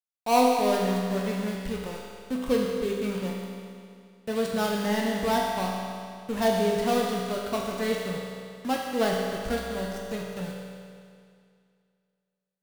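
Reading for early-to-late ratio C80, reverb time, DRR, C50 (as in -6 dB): 1.5 dB, 2.2 s, -2.5 dB, 0.5 dB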